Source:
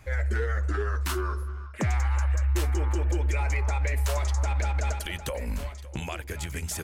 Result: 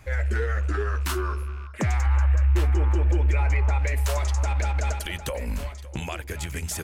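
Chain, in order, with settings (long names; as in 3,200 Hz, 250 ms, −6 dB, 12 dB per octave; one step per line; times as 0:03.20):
loose part that buzzes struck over −36 dBFS, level −42 dBFS
0:02.06–0:03.79: bass and treble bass +3 dB, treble −9 dB
level +2 dB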